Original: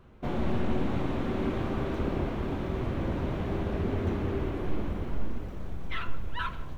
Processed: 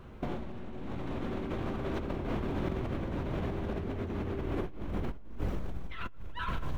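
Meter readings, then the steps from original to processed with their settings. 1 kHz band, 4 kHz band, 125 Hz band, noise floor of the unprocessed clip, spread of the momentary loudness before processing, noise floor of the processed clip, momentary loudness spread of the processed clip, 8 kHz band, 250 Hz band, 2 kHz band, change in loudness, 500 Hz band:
-4.0 dB, -4.5 dB, -4.5 dB, -37 dBFS, 7 LU, -43 dBFS, 7 LU, no reading, -4.5 dB, -4.5 dB, -4.5 dB, -4.0 dB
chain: compressor with a negative ratio -35 dBFS, ratio -1

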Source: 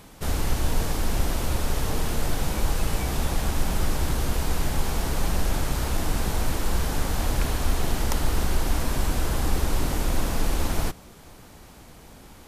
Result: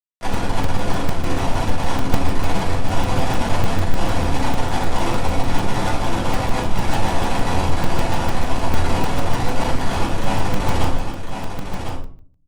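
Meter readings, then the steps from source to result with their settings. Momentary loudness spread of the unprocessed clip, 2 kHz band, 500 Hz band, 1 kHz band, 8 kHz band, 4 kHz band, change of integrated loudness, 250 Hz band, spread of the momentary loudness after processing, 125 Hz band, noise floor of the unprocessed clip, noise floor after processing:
1 LU, +7.0 dB, +8.0 dB, +10.5 dB, -1.5 dB, +4.5 dB, +5.0 dB, +7.5 dB, 6 LU, +5.0 dB, -48 dBFS, -29 dBFS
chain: peaking EQ 900 Hz +15 dB 0.37 oct; in parallel at -1.5 dB: compression 10:1, threshold -33 dBFS, peak gain reduction 18.5 dB; on the sum: Schmitt trigger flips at -23 dBFS; flange 0.31 Hz, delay 7.3 ms, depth 4.3 ms, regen +76%; on a send: delay 1052 ms -7 dB; on the sum: simulated room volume 410 m³, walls furnished, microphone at 6.9 m; frequency shift -20 Hz; low-pass 11 kHz 24 dB/octave; bass shelf 190 Hz -6.5 dB; crackling interface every 0.15 s, samples 128, zero, from 0.34 s; trim -3.5 dB

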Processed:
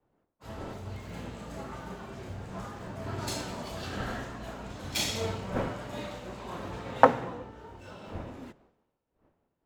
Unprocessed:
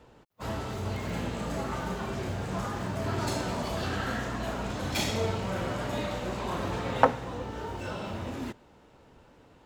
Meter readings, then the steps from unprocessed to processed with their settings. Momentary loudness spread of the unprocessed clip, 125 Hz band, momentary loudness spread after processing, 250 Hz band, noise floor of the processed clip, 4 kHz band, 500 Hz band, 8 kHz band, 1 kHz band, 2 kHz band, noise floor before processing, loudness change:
8 LU, -5.5 dB, 14 LU, -4.5 dB, -80 dBFS, -1.0 dB, -1.5 dB, +0.5 dB, 0.0 dB, -3.0 dB, -58 dBFS, -1.5 dB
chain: wind noise 580 Hz -43 dBFS; three bands expanded up and down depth 100%; trim -6 dB

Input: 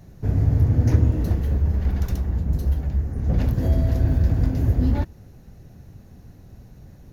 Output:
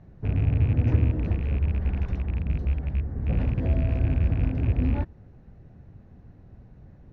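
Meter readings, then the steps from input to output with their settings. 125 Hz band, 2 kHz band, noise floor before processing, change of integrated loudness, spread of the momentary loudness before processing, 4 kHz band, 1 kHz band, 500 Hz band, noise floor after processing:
-4.0 dB, 0.0 dB, -47 dBFS, -4.0 dB, 6 LU, no reading, -4.0 dB, -4.0 dB, -51 dBFS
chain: rattle on loud lows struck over -19 dBFS, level -25 dBFS; low-pass 2.2 kHz 12 dB/octave; trim -4 dB

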